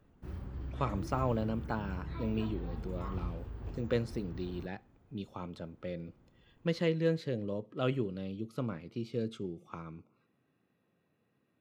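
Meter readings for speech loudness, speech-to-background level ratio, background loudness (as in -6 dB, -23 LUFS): -37.0 LUFS, 6.0 dB, -43.0 LUFS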